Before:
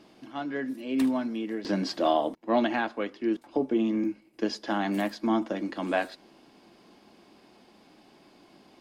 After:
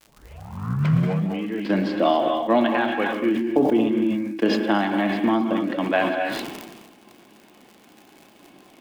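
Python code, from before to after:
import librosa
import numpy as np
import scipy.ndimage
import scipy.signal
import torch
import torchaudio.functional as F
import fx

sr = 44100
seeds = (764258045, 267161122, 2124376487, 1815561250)

y = fx.tape_start_head(x, sr, length_s=1.52)
y = scipy.signal.sosfilt(scipy.signal.butter(2, 95.0, 'highpass', fs=sr, output='sos'), y)
y = fx.high_shelf_res(y, sr, hz=4200.0, db=-10.5, q=1.5)
y = fx.dmg_crackle(y, sr, seeds[0], per_s=110.0, level_db=-41.0)
y = fx.transient(y, sr, attack_db=5, sustain_db=-6)
y = fx.rev_gated(y, sr, seeds[1], gate_ms=290, shape='rising', drr_db=4.5)
y = fx.sustainer(y, sr, db_per_s=39.0)
y = y * librosa.db_to_amplitude(2.5)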